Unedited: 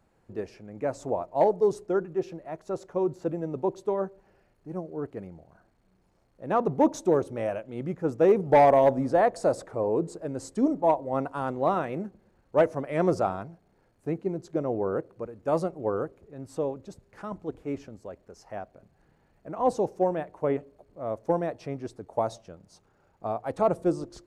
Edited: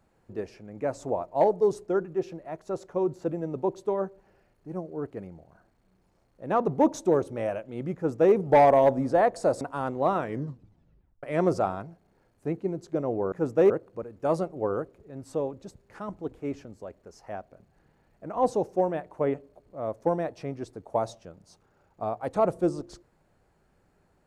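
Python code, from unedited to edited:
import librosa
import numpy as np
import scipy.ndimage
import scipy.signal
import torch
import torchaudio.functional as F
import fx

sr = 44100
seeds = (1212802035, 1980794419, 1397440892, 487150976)

y = fx.edit(x, sr, fx.duplicate(start_s=7.95, length_s=0.38, to_s=14.93),
    fx.cut(start_s=9.61, length_s=1.61),
    fx.tape_stop(start_s=11.79, length_s=1.05), tone=tone)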